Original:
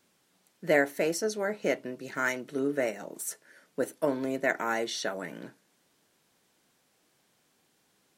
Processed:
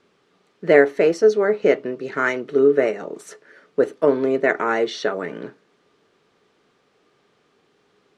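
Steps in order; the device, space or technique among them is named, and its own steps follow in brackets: inside a cardboard box (low-pass 3.8 kHz 12 dB/octave; small resonant body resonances 420/1200 Hz, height 11 dB, ringing for 40 ms); trim +7 dB

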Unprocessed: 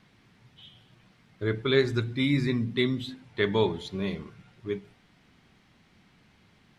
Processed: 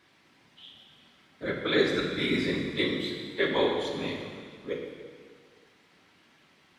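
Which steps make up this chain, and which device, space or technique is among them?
whispering ghost (whisper effect; high-pass 440 Hz 6 dB/octave; reverberation RT60 1.9 s, pre-delay 3 ms, DRR 0.5 dB)

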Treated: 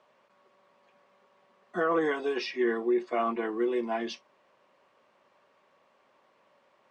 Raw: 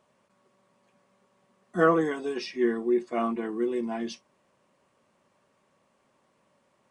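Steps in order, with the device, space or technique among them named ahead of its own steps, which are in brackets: DJ mixer with the lows and highs turned down (three-band isolator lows -13 dB, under 360 Hz, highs -20 dB, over 5.1 kHz; peak limiter -23 dBFS, peak gain reduction 11.5 dB); trim +4.5 dB

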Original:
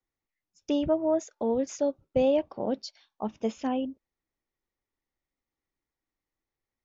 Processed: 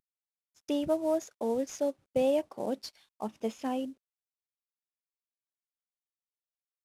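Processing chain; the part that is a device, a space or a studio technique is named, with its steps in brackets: early wireless headset (high-pass 170 Hz 6 dB/octave; CVSD coder 64 kbps); trim -2.5 dB

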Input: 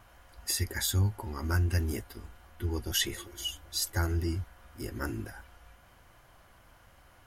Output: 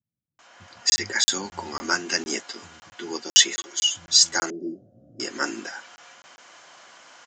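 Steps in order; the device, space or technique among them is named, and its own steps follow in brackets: 4.11–4.81 s: elliptic low-pass 610 Hz, stop band 40 dB; RIAA curve recording; bands offset in time lows, highs 390 ms, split 150 Hz; 0.47–1.32 s: treble shelf 6.3 kHz -10.5 dB; call with lost packets (high-pass 150 Hz 24 dB/octave; resampled via 16 kHz; level rider gain up to 9.5 dB; lost packets of 20 ms random); trim +1 dB

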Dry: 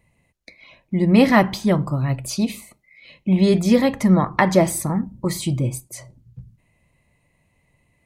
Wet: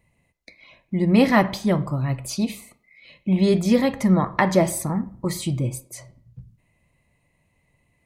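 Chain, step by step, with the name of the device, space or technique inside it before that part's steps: filtered reverb send (on a send: high-pass 330 Hz + low-pass 4.3 kHz + reverberation RT60 0.55 s, pre-delay 19 ms, DRR 15 dB); on the sum: trim -2.5 dB

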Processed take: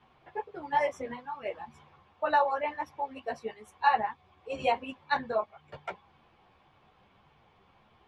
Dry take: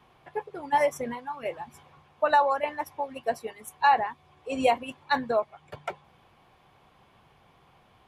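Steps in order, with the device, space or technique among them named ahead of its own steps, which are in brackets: string-machine ensemble chorus (three-phase chorus; low-pass 4.9 kHz 12 dB/octave)

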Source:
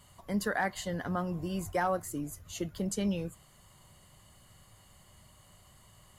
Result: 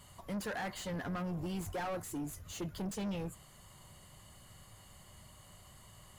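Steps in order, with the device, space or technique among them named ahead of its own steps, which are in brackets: saturation between pre-emphasis and de-emphasis (treble shelf 3.1 kHz +10 dB; saturation -36.5 dBFS, distortion -6 dB; treble shelf 3.1 kHz -10 dB); trim +2 dB

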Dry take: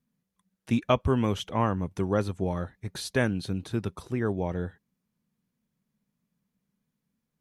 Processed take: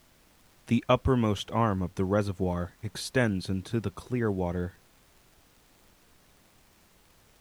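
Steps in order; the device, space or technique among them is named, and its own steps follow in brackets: vinyl LP (crackle; pink noise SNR 30 dB)

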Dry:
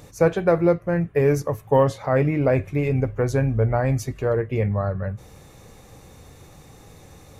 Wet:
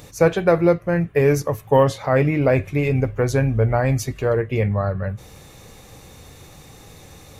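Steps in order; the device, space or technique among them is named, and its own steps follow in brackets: presence and air boost (peaking EQ 3.4 kHz +5 dB 1.7 oct; treble shelf 11 kHz +6.5 dB); trim +2 dB

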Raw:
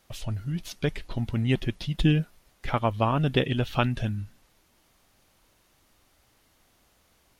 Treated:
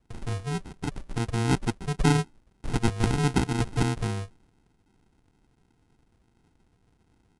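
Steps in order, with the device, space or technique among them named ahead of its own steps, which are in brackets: crushed at another speed (playback speed 2×; sample-and-hold 38×; playback speed 0.5×)

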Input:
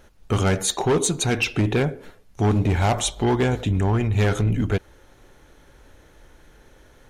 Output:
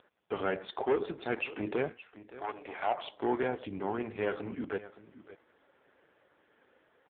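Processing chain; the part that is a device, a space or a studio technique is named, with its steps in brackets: 1.89–3.10 s: high-pass 1.3 kHz -> 360 Hz 12 dB/octave; satellite phone (band-pass 330–3100 Hz; delay 569 ms -16.5 dB; trim -6 dB; AMR-NB 4.75 kbps 8 kHz)

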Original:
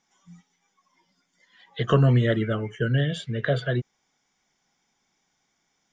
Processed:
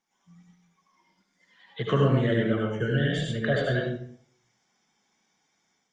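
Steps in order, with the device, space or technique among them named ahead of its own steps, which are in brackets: far-field microphone of a smart speaker (reverberation RT60 0.55 s, pre-delay 71 ms, DRR -1.5 dB; high-pass 97 Hz 12 dB/octave; level rider gain up to 5 dB; trim -7.5 dB; Opus 32 kbps 48 kHz)

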